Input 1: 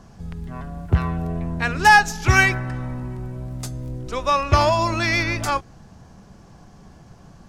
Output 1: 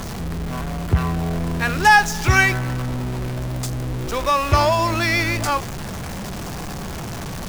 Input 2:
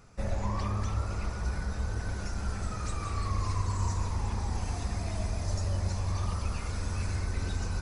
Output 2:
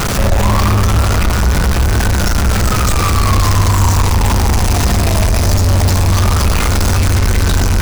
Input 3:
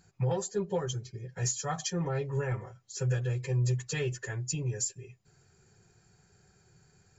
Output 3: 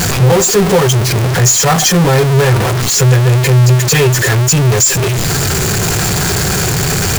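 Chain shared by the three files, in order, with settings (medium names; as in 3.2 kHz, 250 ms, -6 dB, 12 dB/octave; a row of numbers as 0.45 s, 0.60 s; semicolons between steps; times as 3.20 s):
jump at every zero crossing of -23.5 dBFS; peak normalisation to -2 dBFS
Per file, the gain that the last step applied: -1.0 dB, +13.5 dB, +16.0 dB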